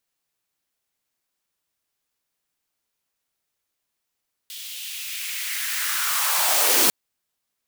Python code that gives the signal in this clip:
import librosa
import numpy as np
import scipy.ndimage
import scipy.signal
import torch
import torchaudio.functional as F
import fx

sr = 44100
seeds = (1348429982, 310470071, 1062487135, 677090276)

y = fx.riser_noise(sr, seeds[0], length_s=2.4, colour='white', kind='highpass', start_hz=3300.0, end_hz=220.0, q=2.6, swell_db=21.5, law='linear')